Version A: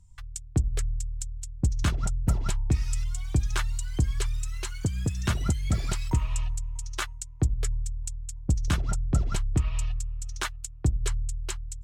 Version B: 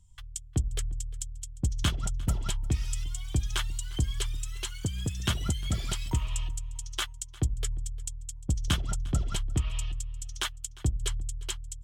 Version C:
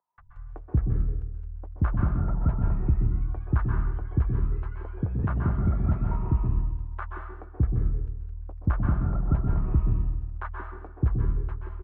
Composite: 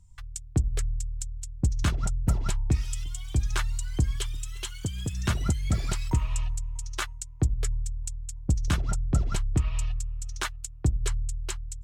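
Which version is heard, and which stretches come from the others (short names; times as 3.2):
A
2.81–3.36 from B
4.16–5.13 from B
not used: C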